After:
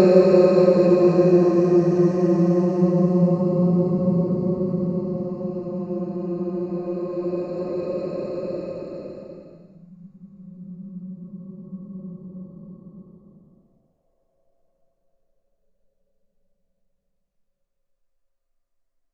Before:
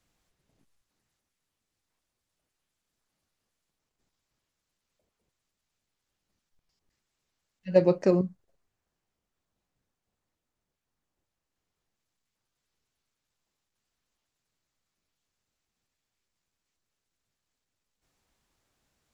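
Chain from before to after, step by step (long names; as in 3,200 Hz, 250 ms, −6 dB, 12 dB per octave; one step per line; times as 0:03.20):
delay that plays each chunk backwards 119 ms, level −10 dB
noise reduction from a noise print of the clip's start 12 dB
extreme stretch with random phases 35×, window 0.10 s, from 0:08.09
level +5 dB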